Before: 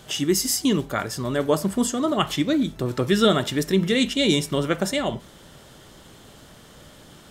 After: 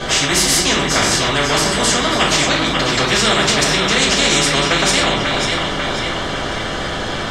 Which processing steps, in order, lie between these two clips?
air absorption 120 m; echo with dull and thin repeats by turns 0.271 s, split 910 Hz, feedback 61%, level -8 dB; shoebox room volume 150 m³, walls furnished, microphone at 5.3 m; spectral compressor 4:1; gain -7.5 dB

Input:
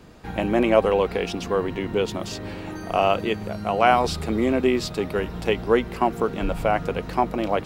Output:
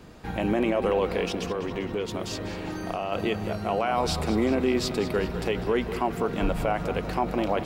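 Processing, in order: limiter -15 dBFS, peak gain reduction 11.5 dB; 1.26–3.12 compressor 3:1, threshold -28 dBFS, peak gain reduction 6.5 dB; tape echo 0.197 s, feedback 72%, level -10.5 dB, low-pass 5800 Hz

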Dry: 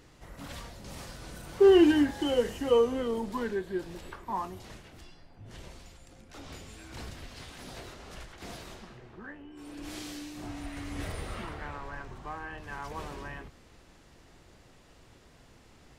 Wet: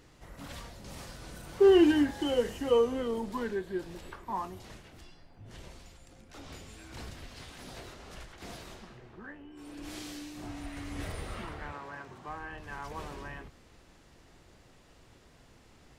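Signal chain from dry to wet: 11.72–12.29 HPF 130 Hz 12 dB/oct; gain -1.5 dB

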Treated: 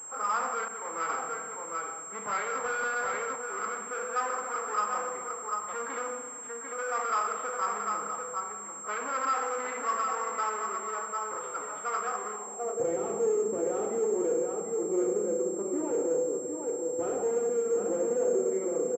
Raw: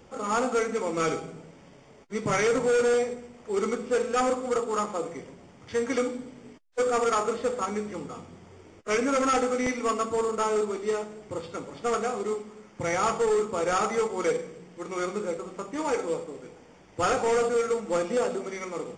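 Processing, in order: echo 0.746 s -9.5 dB; soft clip -31.5 dBFS, distortion -7 dB; Schroeder reverb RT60 1.6 s, combs from 30 ms, DRR 5 dB; 0.68–1.1 expander -30 dBFS; band-pass sweep 1200 Hz -> 380 Hz, 12.32–12.94; 2.64–3.36 sample leveller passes 1; pulse-width modulation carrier 7500 Hz; gain +8.5 dB

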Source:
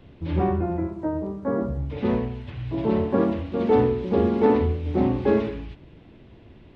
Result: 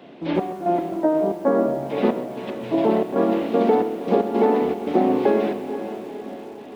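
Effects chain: HPF 210 Hz 24 dB/oct; bell 690 Hz +8 dB 0.45 oct; compressor 16:1, threshold -22 dBFS, peak gain reduction 10.5 dB; step gate "xxx..x.xxx.xx" 114 bpm -12 dB; diffused feedback echo 0.484 s, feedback 56%, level -11 dB; lo-fi delay 0.13 s, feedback 35%, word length 8-bit, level -14 dB; gain +8 dB

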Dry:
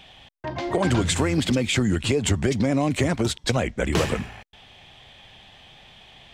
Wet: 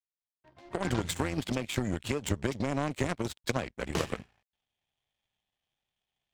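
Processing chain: opening faded in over 0.87 s; power-law curve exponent 2; gain -2 dB

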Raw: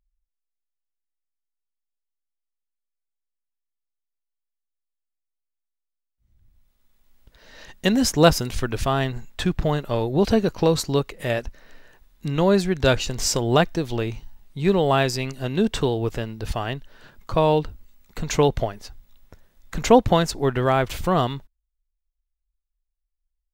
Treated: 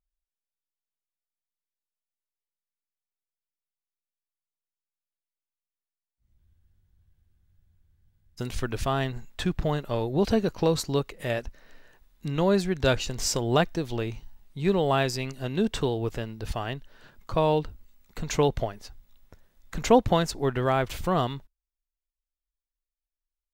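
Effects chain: spectral noise reduction 8 dB; spectral freeze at 6.42, 1.97 s; gain -4.5 dB

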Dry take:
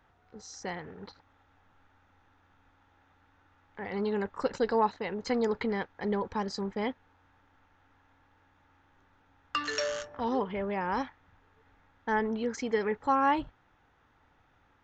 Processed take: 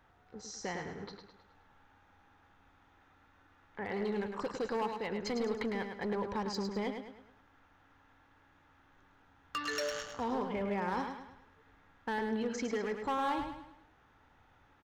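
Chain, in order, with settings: compressor 2:1, threshold -35 dBFS, peak gain reduction 8 dB; overloaded stage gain 30 dB; on a send: feedback echo 0.105 s, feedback 43%, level -6.5 dB

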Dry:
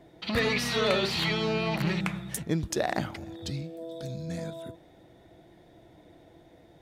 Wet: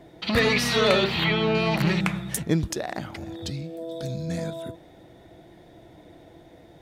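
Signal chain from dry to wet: 1.04–1.55 band shelf 7500 Hz -14 dB; 2.7–3.88 compressor 3:1, threshold -35 dBFS, peak gain reduction 9.5 dB; gain +5.5 dB

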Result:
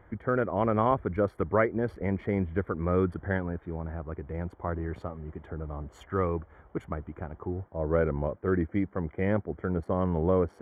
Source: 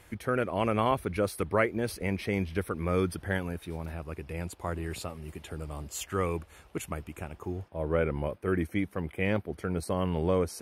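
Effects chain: Wiener smoothing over 9 samples; polynomial smoothing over 41 samples; gain +2 dB

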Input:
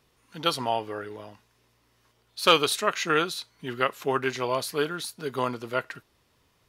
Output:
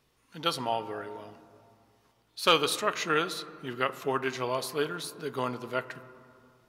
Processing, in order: on a send: air absorption 290 m + reverb RT60 2.5 s, pre-delay 3 ms, DRR 13 dB; on the sum: gain -3.5 dB

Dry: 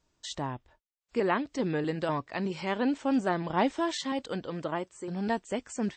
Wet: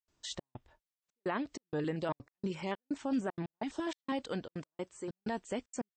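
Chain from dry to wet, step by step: limiter -22 dBFS, peak gain reduction 7.5 dB; step gate ".xxxx..xxxxx.x." 191 bpm -60 dB; 1.63–3.87 stepped notch 12 Hz 530–6400 Hz; gain -2.5 dB

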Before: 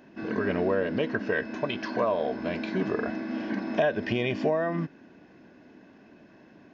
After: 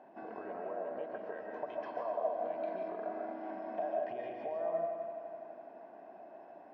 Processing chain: compressor 12:1, threshold -37 dBFS, peak gain reduction 17.5 dB; band-pass 740 Hz, Q 4.3; multi-head echo 84 ms, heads second and third, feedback 63%, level -12 dB; reverb RT60 0.50 s, pre-delay 0.105 s, DRR 1.5 dB; gain +8.5 dB

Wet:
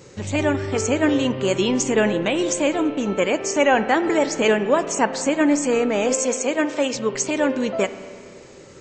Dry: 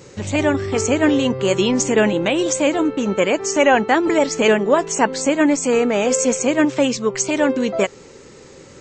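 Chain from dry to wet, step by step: 6.14–6.94 HPF 320 Hz 12 dB/oct; spring tank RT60 2.2 s, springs 31/48 ms, chirp 40 ms, DRR 11.5 dB; gain -3 dB

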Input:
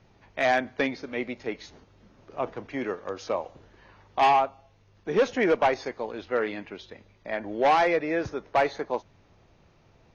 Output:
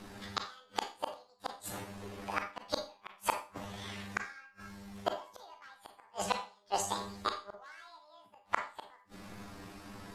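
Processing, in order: delay-line pitch shifter +12 st; dynamic EQ 830 Hz, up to +5 dB, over -44 dBFS, Q 6.8; flipped gate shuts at -25 dBFS, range -42 dB; Schroeder reverb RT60 0.35 s, combs from 28 ms, DRR 5 dB; gain +10 dB

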